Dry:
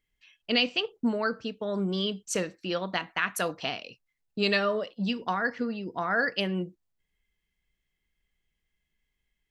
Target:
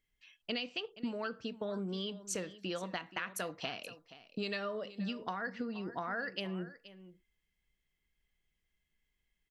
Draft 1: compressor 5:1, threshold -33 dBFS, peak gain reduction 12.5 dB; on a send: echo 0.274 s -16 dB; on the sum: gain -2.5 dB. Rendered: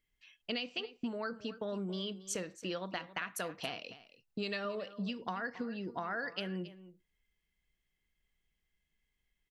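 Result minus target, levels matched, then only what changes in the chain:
echo 0.202 s early
change: echo 0.476 s -16 dB

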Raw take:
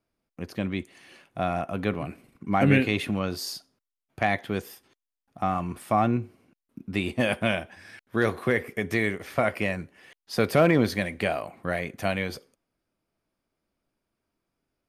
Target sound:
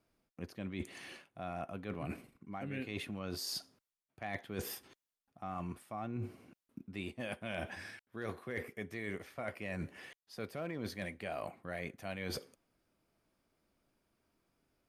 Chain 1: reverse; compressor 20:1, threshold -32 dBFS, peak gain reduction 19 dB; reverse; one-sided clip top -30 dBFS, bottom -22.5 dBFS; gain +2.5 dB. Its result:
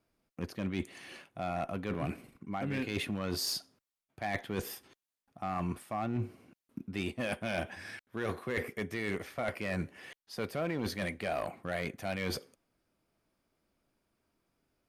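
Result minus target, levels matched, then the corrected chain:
compressor: peak gain reduction -7 dB
reverse; compressor 20:1, threshold -39.5 dBFS, peak gain reduction 26 dB; reverse; one-sided clip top -30 dBFS, bottom -22.5 dBFS; gain +2.5 dB

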